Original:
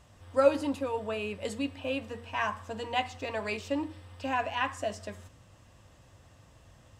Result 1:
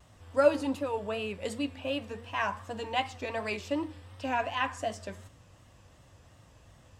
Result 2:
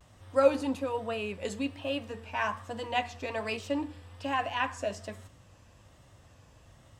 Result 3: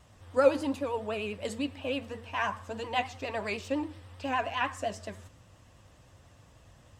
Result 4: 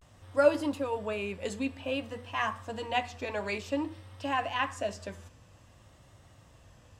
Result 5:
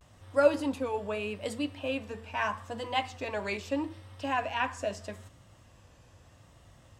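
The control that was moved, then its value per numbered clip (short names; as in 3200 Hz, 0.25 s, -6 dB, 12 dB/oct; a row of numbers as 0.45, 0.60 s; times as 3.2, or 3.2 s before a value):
vibrato, rate: 2.7, 1.2, 9.9, 0.53, 0.79 Hz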